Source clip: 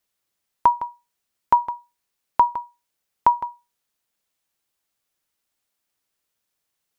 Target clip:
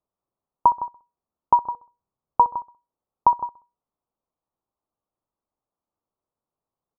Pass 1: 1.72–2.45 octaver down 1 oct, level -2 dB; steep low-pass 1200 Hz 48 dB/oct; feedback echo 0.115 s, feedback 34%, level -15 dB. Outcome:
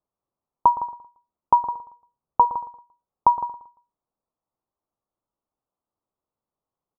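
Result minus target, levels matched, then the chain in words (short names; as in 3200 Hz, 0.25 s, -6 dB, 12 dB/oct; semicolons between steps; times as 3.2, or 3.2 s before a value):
echo 51 ms late
1.72–2.45 octaver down 1 oct, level -2 dB; steep low-pass 1200 Hz 48 dB/oct; feedback echo 64 ms, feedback 34%, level -15 dB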